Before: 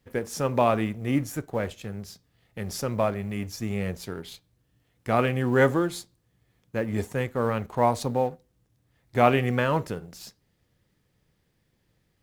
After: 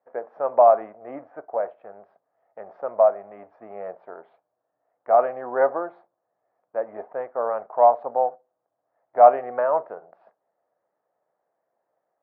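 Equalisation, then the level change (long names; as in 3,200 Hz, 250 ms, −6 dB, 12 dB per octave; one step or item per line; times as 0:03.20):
high-pass with resonance 660 Hz, resonance Q 4.9
low-pass filter 1,400 Hz 24 dB per octave
high-frequency loss of the air 56 metres
−2.0 dB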